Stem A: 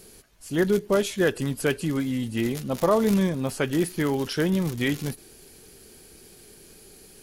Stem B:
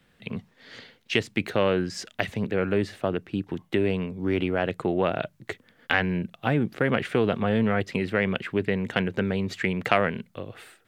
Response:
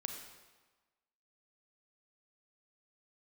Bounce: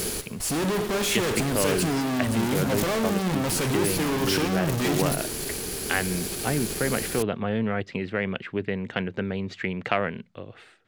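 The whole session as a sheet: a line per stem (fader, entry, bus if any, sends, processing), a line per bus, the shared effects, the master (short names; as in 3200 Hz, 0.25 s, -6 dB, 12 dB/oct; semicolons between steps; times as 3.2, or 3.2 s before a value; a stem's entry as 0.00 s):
-10.5 dB, 0.00 s, send -5 dB, fuzz box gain 49 dB, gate -53 dBFS; auto duck -7 dB, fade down 0.25 s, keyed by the second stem
-3.0 dB, 0.00 s, no send, LPF 5900 Hz 12 dB/oct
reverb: on, RT60 1.3 s, pre-delay 31 ms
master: dry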